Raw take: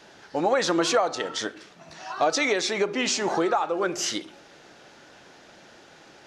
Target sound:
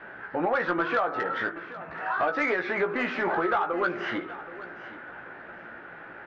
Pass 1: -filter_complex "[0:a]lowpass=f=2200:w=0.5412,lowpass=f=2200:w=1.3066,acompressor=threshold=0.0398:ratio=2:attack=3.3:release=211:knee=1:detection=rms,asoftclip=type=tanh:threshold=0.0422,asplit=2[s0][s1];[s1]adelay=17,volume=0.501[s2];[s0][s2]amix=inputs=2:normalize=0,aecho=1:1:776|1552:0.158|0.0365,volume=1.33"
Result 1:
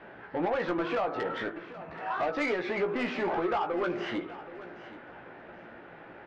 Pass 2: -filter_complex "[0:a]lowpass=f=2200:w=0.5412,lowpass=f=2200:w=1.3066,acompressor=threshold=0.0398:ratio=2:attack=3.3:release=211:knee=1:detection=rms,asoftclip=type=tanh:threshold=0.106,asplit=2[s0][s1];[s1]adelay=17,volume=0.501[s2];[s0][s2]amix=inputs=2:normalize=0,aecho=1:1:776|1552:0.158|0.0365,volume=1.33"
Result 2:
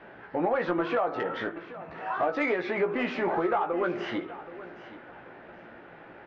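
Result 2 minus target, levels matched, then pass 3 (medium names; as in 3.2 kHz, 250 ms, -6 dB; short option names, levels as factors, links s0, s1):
2 kHz band -4.5 dB
-filter_complex "[0:a]lowpass=f=2200:w=0.5412,lowpass=f=2200:w=1.3066,equalizer=f=1500:t=o:w=0.86:g=10,acompressor=threshold=0.0398:ratio=2:attack=3.3:release=211:knee=1:detection=rms,asoftclip=type=tanh:threshold=0.106,asplit=2[s0][s1];[s1]adelay=17,volume=0.501[s2];[s0][s2]amix=inputs=2:normalize=0,aecho=1:1:776|1552:0.158|0.0365,volume=1.33"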